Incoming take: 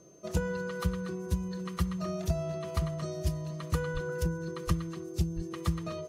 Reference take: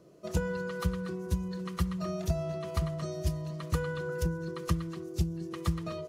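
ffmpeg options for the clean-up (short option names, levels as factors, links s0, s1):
-filter_complex "[0:a]bandreject=f=6300:w=30,asplit=3[s0][s1][s2];[s0]afade=t=out:st=3.93:d=0.02[s3];[s1]highpass=f=140:w=0.5412,highpass=f=140:w=1.3066,afade=t=in:st=3.93:d=0.02,afade=t=out:st=4.05:d=0.02[s4];[s2]afade=t=in:st=4.05:d=0.02[s5];[s3][s4][s5]amix=inputs=3:normalize=0,asplit=3[s6][s7][s8];[s6]afade=t=out:st=4.66:d=0.02[s9];[s7]highpass=f=140:w=0.5412,highpass=f=140:w=1.3066,afade=t=in:st=4.66:d=0.02,afade=t=out:st=4.78:d=0.02[s10];[s8]afade=t=in:st=4.78:d=0.02[s11];[s9][s10][s11]amix=inputs=3:normalize=0,asplit=3[s12][s13][s14];[s12]afade=t=out:st=5.35:d=0.02[s15];[s13]highpass=f=140:w=0.5412,highpass=f=140:w=1.3066,afade=t=in:st=5.35:d=0.02,afade=t=out:st=5.47:d=0.02[s16];[s14]afade=t=in:st=5.47:d=0.02[s17];[s15][s16][s17]amix=inputs=3:normalize=0"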